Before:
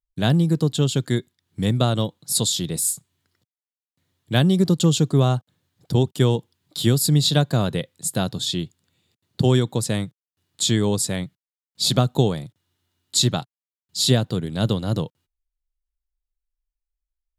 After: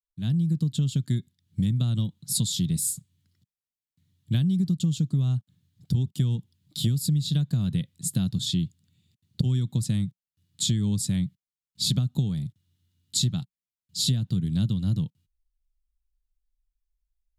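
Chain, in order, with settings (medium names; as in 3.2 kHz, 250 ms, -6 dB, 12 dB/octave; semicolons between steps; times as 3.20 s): fade-in on the opening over 0.89 s; FFT filter 190 Hz 0 dB, 500 Hz -24 dB, 1.5 kHz -18 dB, 3.3 kHz -10 dB; compression 10:1, threshold -27 dBFS, peak gain reduction 13 dB; trim +6 dB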